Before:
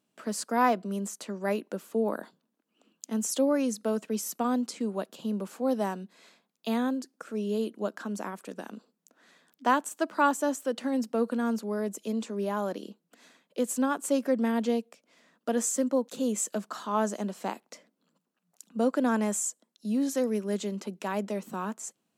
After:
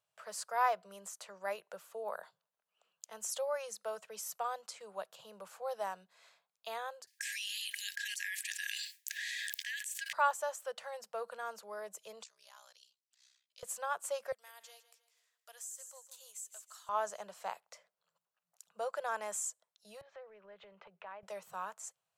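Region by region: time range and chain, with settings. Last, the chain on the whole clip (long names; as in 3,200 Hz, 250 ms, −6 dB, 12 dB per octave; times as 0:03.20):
0:07.07–0:10.13: noise gate with hold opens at −53 dBFS, closes at −64 dBFS + linear-phase brick-wall high-pass 1,600 Hz + envelope flattener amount 100%
0:12.23–0:13.63: resonant band-pass 5,000 Hz, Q 1.6 + spectral tilt +2.5 dB per octave + ring modulation 32 Hz
0:14.32–0:16.89: first difference + repeating echo 157 ms, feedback 39%, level −14 dB + downward compressor 3 to 1, threshold −37 dBFS
0:20.01–0:21.23: low-pass filter 2,800 Hz 24 dB per octave + downward compressor 4 to 1, threshold −37 dBFS
whole clip: Chebyshev band-stop filter 110–630 Hz, order 2; parametric band 1,300 Hz +2 dB; level −6 dB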